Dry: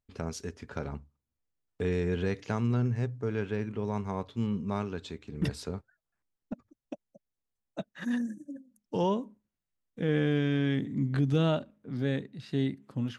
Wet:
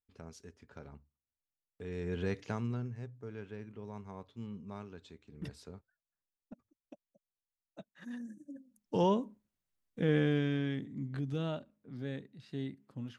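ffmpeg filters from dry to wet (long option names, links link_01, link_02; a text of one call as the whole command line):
ffmpeg -i in.wav -af "volume=9dB,afade=type=in:start_time=1.85:duration=0.48:silence=0.298538,afade=type=out:start_time=2.33:duration=0.58:silence=0.334965,afade=type=in:start_time=8.18:duration=0.83:silence=0.237137,afade=type=out:start_time=10.02:duration=0.85:silence=0.334965" out.wav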